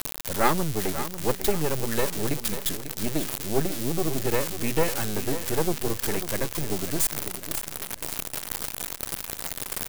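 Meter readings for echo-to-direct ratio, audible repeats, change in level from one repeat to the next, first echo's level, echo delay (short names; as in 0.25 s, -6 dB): -11.0 dB, 3, -8.0 dB, -11.5 dB, 0.544 s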